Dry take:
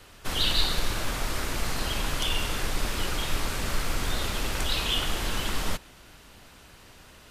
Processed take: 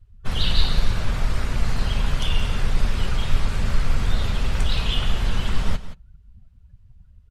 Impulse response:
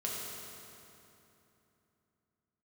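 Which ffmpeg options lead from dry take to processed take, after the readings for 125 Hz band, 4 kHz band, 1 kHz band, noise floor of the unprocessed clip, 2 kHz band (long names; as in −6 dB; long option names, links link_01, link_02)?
+10.0 dB, −1.0 dB, 0.0 dB, −52 dBFS, −0.5 dB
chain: -af "equalizer=frequency=310:width_type=o:width=0.22:gain=-12.5,aresample=32000,aresample=44100,afftdn=noise_reduction=29:noise_floor=-42,bass=frequency=250:gain=10,treble=frequency=4000:gain=-2,aecho=1:1:173:0.211"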